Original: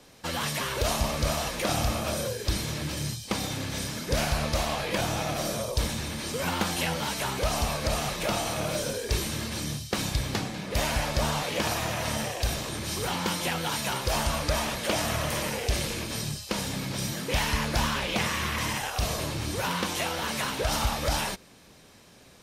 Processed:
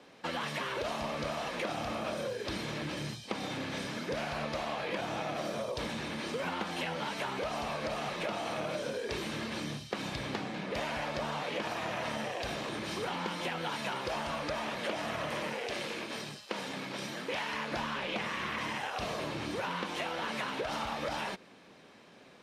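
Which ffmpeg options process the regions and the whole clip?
ffmpeg -i in.wav -filter_complex "[0:a]asettb=1/sr,asplit=3[link_01][link_02][link_03];[link_01]atrim=end=15.534[link_04];[link_02]atrim=start=15.53:end=17.72,asetpts=PTS-STARTPTS,afade=type=in:duration=0.004:curve=qsin,afade=type=out:start_time=2.186:duration=0.004:curve=qsin,highpass=frequency=280:poles=1,aeval=exprs='sgn(val(0))*max(abs(val(0))-0.00355,0)':channel_layout=same[link_05];[link_03]atrim=start=17.716[link_06];[link_04][link_05]acrossfade=duration=0.004:curve1=hsin:curve2=qsin[link_07];[link_07][link_06]acrossfade=duration=0.004:curve1=qsin:curve2=hsin,lowpass=11000,acrossover=split=160 3700:gain=0.112 1 0.2[link_08][link_09][link_10];[link_08][link_09][link_10]amix=inputs=3:normalize=0,acompressor=threshold=-32dB:ratio=6" out.wav

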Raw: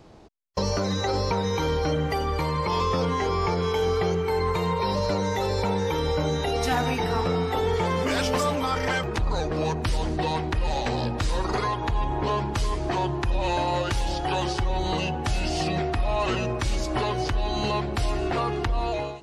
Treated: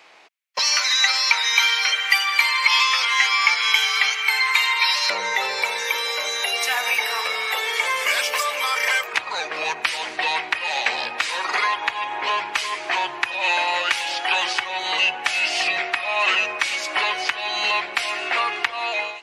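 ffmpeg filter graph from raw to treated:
ffmpeg -i in.wav -filter_complex "[0:a]asettb=1/sr,asplit=3[link_01][link_02][link_03];[link_01]atrim=end=0.594[link_04];[link_02]atrim=start=0.59:end=5.1,asetpts=PTS-STARTPTS,afade=type=in:duration=0.004:curve=qsin,afade=type=out:start_time=4.506:duration=0.004:curve=qsin,highpass=1100,highshelf=frequency=2300:gain=10.5[link_05];[link_03]atrim=start=5.096[link_06];[link_04][link_05]acrossfade=duration=0.004:curve1=hsin:curve2=qsin[link_07];[link_07][link_06]acrossfade=duration=0.004:curve1=qsin:curve2=hsin,asettb=1/sr,asplit=3[link_08][link_09][link_10];[link_08]atrim=end=5.624[link_11];[link_09]atrim=start=5.62:end=9.13,asetpts=PTS-STARTPTS,afade=type=in:duration=0.004:curve=qsin,afade=type=out:start_time=3.506:duration=0.004:curve=qsin,aemphasis=mode=production:type=bsi,aecho=1:1:1.8:0.39,atrim=end_sample=154791,acrossover=split=150|1100|6800[link_12][link_13][link_14][link_15];[link_12]acompressor=threshold=-50dB:ratio=3[link_16];[link_13]acompressor=threshold=-27dB:ratio=3[link_17];[link_14]acompressor=threshold=-35dB:ratio=3[link_18];[link_15]acompressor=threshold=-41dB:ratio=3[link_19];[link_16][link_17][link_18][link_19]amix=inputs=4:normalize=0[link_20];[link_10]atrim=start=9.126[link_21];[link_11][link_20]acrossfade=duration=0.004:curve1=hsin:curve2=qsin[link_22];[link_22][link_21]acrossfade=duration=0.004:curve1=qsin:curve2=hsin,highpass=890,equalizer=frequency=2300:width=1.4:gain=12.5,acontrast=22" out.wav

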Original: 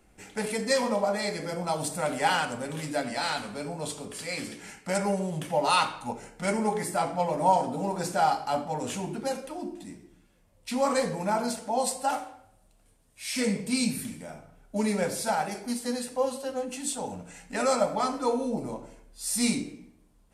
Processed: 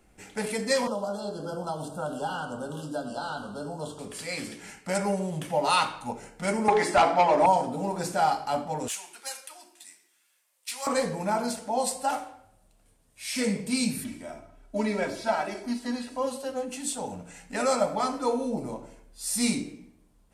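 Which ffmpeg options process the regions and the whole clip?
ffmpeg -i in.wav -filter_complex "[0:a]asettb=1/sr,asplit=3[link_01][link_02][link_03];[link_01]atrim=end=0.874[link_04];[link_02]atrim=start=0.87:end=3.99,asetpts=PTS-STARTPTS,afade=type=in:duration=0.004:curve=qsin,afade=type=out:start_time=3.116:duration=0.004:curve=qsin,asplit=2[link_05][link_06];[link_06]adelay=20,volume=-13dB[link_07];[link_05][link_07]amix=inputs=2:normalize=0,atrim=end_sample=137592,acrossover=split=290|2600[link_08][link_09][link_10];[link_08]acompressor=threshold=-38dB:ratio=4[link_11];[link_09]acompressor=threshold=-30dB:ratio=4[link_12];[link_10]acompressor=threshold=-50dB:ratio=4[link_13];[link_11][link_12][link_13]amix=inputs=3:normalize=0,asuperstop=centerf=2100:order=20:qfactor=1.8[link_14];[link_03]atrim=start=3.986[link_15];[link_04][link_14]acrossfade=duration=0.004:curve1=hsin:curve2=qsin[link_16];[link_16][link_15]acrossfade=duration=0.004:curve1=qsin:curve2=hsin,asettb=1/sr,asplit=3[link_17][link_18][link_19];[link_17]atrim=end=6.684[link_20];[link_18]atrim=start=6.68:end=7.46,asetpts=PTS-STARTPTS,afade=type=in:duration=0.004:curve=qsin,afade=type=out:start_time=0.776:duration=0.004:curve=qsin,highpass=360,lowpass=4800,bandreject=frequency=510:width=10,aeval=exprs='0.2*sin(PI/2*2.24*val(0)/0.2)':channel_layout=same[link_21];[link_19]atrim=start=7.456[link_22];[link_20][link_21]acrossfade=duration=0.004:curve1=hsin:curve2=qsin[link_23];[link_23][link_22]acrossfade=duration=0.004:curve1=qsin:curve2=hsin,asettb=1/sr,asplit=3[link_24][link_25][link_26];[link_24]atrim=end=8.884[link_27];[link_25]atrim=start=8.88:end=10.87,asetpts=PTS-STARTPTS,afade=type=in:duration=0.004:curve=qsin,afade=type=out:start_time=1.986:duration=0.004:curve=qsin,highpass=1400,highshelf=frequency=6400:gain=9.5,asoftclip=type=hard:threshold=-25.5dB[link_28];[link_26]atrim=start=10.866[link_29];[link_27][link_28]acrossfade=duration=0.004:curve1=hsin:curve2=qsin[link_30];[link_30][link_29]acrossfade=duration=0.004:curve1=qsin:curve2=hsin,asettb=1/sr,asplit=3[link_31][link_32][link_33];[link_31]atrim=end=14.044[link_34];[link_32]atrim=start=14.04:end=16.27,asetpts=PTS-STARTPTS,afade=type=in:duration=0.004:curve=qsin,afade=type=out:start_time=2.226:duration=0.004:curve=qsin,acrossover=split=4600[link_35][link_36];[link_36]acompressor=threshold=-50dB:ratio=4:attack=1:release=60[link_37];[link_35][link_37]amix=inputs=2:normalize=0,highshelf=frequency=12000:gain=-9.5,aecho=1:1:3.1:0.64,atrim=end_sample=98343[link_38];[link_33]atrim=start=16.266[link_39];[link_34][link_38]acrossfade=duration=0.004:curve1=hsin:curve2=qsin[link_40];[link_40][link_39]acrossfade=duration=0.004:curve1=qsin:curve2=hsin" out.wav

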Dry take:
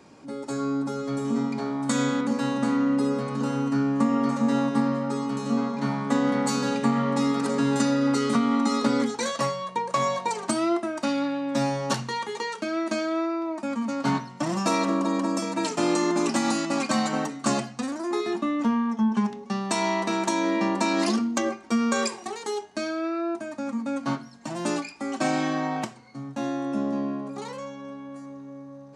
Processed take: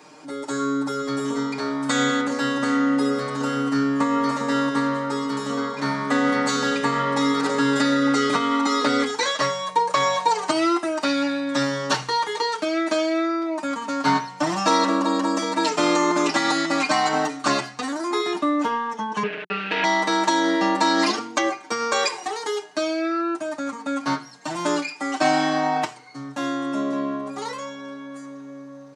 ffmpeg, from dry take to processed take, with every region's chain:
ffmpeg -i in.wav -filter_complex "[0:a]asettb=1/sr,asplit=3[link_01][link_02][link_03];[link_01]atrim=end=8.814[link_04];[link_02]atrim=start=8.81:end=11.63,asetpts=PTS-STARTPTS,afade=type=in:duration=0.004:curve=qsin,afade=type=out:start_time=2.816:duration=0.004:curve=qsin,acrossover=split=6000[link_05][link_06];[link_06]acompressor=threshold=-53dB:ratio=4:attack=1:release=60[link_07];[link_05][link_07]amix=inputs=2:normalize=0,equalizer=frequency=8900:width=0.76:gain=7,bandreject=frequency=3500:width=29[link_08];[link_03]atrim=start=11.626[link_09];[link_04][link_08]acrossfade=duration=0.004:curve1=hsin:curve2=qsin[link_10];[link_10][link_09]acrossfade=duration=0.004:curve1=qsin:curve2=hsin,asettb=1/sr,asplit=3[link_11][link_12][link_13];[link_11]atrim=end=19.234[link_14];[link_12]atrim=start=19.23:end=19.84,asetpts=PTS-STARTPTS,afade=type=in:duration=0.004:curve=qsin,afade=type=out:start_time=0.606:duration=0.004:curve=qsin,aecho=1:1:4.3:0.53,atrim=end_sample=26901,acrusher=bits=3:dc=4:mix=0:aa=0.000001,highpass=170,equalizer=frequency=180:width_type=q:width=4:gain=5,equalizer=frequency=370:width_type=q:width=4:gain=9,equalizer=frequency=740:width_type=q:width=4:gain=-6,equalizer=frequency=1100:width_type=q:width=4:gain=-8,equalizer=frequency=1600:width_type=q:width=4:gain=6,equalizer=frequency=2600:width_type=q:width=4:gain=10,lowpass=frequency=3000:width=0.5412,lowpass=frequency=3000:width=1.3066[link_15];[link_13]atrim=start=19.836[link_16];[link_14][link_15]acrossfade=duration=0.004:curve1=hsin:curve2=qsin[link_17];[link_17][link_16]acrossfade=duration=0.004:curve1=qsin:curve2=hsin,highpass=frequency=600:poles=1,acrossover=split=5900[link_18][link_19];[link_19]acompressor=threshold=-51dB:ratio=4:attack=1:release=60[link_20];[link_18][link_20]amix=inputs=2:normalize=0,aecho=1:1:6.6:0.87,volume=6dB" out.wav

